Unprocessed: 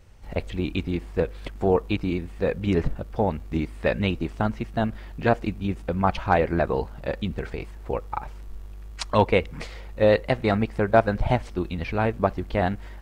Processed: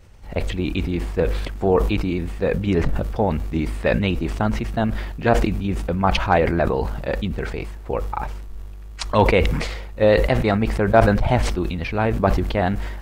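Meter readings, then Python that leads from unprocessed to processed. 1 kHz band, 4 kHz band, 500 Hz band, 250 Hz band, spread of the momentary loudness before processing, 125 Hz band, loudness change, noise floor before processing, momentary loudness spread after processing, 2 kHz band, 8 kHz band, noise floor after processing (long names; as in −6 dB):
+3.5 dB, +5.5 dB, +3.5 dB, +4.0 dB, 13 LU, +5.0 dB, +4.0 dB, −40 dBFS, 11 LU, +4.5 dB, can't be measured, −35 dBFS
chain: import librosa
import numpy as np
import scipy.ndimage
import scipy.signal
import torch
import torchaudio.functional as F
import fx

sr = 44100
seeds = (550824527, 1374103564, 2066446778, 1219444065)

y = fx.sustainer(x, sr, db_per_s=40.0)
y = y * librosa.db_to_amplitude(2.5)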